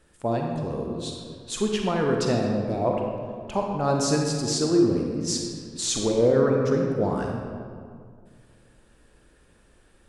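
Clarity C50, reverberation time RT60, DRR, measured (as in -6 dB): 1.5 dB, 2.1 s, 0.5 dB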